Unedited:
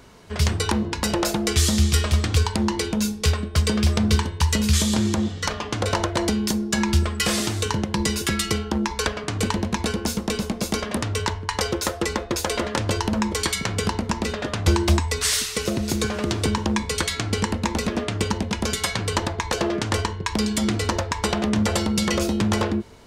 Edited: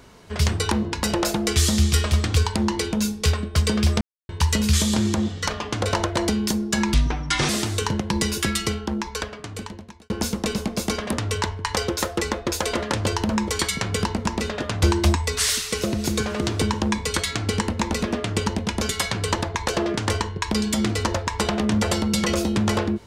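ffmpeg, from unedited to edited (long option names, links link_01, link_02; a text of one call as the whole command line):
ffmpeg -i in.wav -filter_complex "[0:a]asplit=6[link_01][link_02][link_03][link_04][link_05][link_06];[link_01]atrim=end=4.01,asetpts=PTS-STARTPTS,afade=type=out:start_time=4.006:duration=0.004:curve=hsin[link_07];[link_02]atrim=start=4.01:end=4.29,asetpts=PTS-STARTPTS,volume=0[link_08];[link_03]atrim=start=4.29:end=6.944,asetpts=PTS-STARTPTS,afade=type=in:duration=0.004:curve=hsin[link_09];[link_04]atrim=start=6.94:end=7.33,asetpts=PTS-STARTPTS,asetrate=31311,aresample=44100[link_10];[link_05]atrim=start=7.326:end=9.94,asetpts=PTS-STARTPTS,afade=type=out:start_time=1.004:duration=1.61[link_11];[link_06]atrim=start=9.94,asetpts=PTS-STARTPTS,afade=type=in:duration=0.004:curve=hsin[link_12];[link_07][link_08][link_09]concat=n=3:v=0:a=1[link_13];[link_13][link_10]acrossfade=duration=0.004:curve1=hsin:curve2=hsin[link_14];[link_11][link_12]concat=n=2:v=0:a=1[link_15];[link_14][link_15]acrossfade=duration=0.004:curve1=hsin:curve2=hsin" out.wav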